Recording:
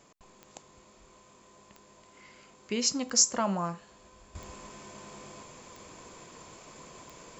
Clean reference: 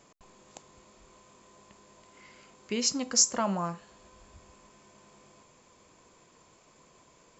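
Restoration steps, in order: de-click; gain 0 dB, from 4.35 s -10.5 dB

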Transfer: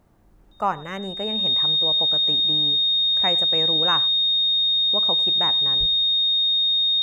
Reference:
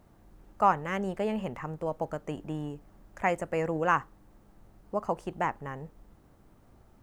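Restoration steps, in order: notch 3700 Hz, Q 30; 5.79–5.91 HPF 140 Hz 24 dB/oct; inverse comb 0.101 s -20.5 dB

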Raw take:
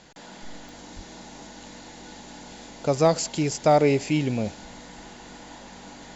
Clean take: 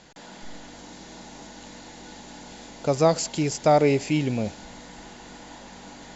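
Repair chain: clip repair -10 dBFS; de-click; 0.95–1.07 HPF 140 Hz 24 dB/oct

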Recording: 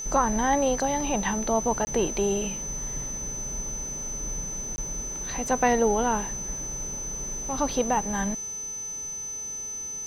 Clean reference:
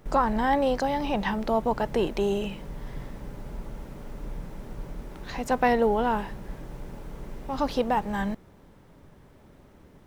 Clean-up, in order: de-hum 435.4 Hz, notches 31; notch 6100 Hz, Q 30; interpolate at 1.85/4.76, 20 ms

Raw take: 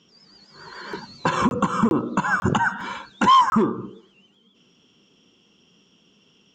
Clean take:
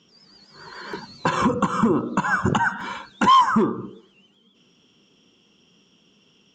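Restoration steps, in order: interpolate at 1.49/1.89/2.4/3.5, 21 ms

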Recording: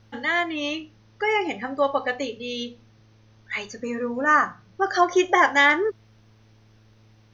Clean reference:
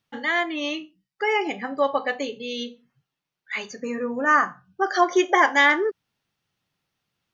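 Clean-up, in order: de-hum 108.8 Hz, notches 5; expander -48 dBFS, range -21 dB

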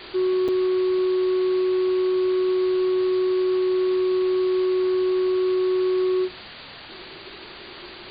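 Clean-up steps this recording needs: interpolate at 0.48, 6 ms; noise print and reduce 30 dB

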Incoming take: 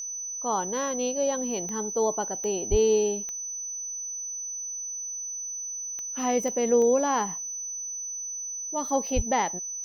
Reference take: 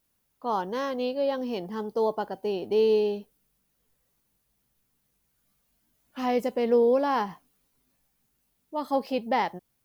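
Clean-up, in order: de-click; notch 6000 Hz, Q 30; 2.7–2.82 HPF 140 Hz 24 dB/oct; 9.15–9.27 HPF 140 Hz 24 dB/oct

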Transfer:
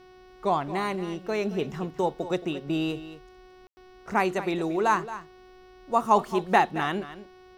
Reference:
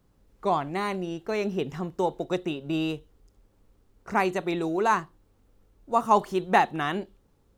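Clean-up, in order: de-hum 369 Hz, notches 16; room tone fill 3.67–3.77; inverse comb 0.224 s -14 dB

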